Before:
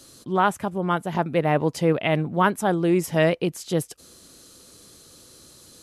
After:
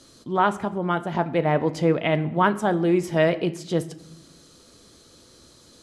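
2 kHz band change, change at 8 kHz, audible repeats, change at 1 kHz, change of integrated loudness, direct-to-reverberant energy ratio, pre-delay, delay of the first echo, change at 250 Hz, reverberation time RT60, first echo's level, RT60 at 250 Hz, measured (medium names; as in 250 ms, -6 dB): -0.5 dB, -6.5 dB, no echo, 0.0 dB, 0.0 dB, 10.5 dB, 3 ms, no echo, 0.0 dB, 0.85 s, no echo, 1.3 s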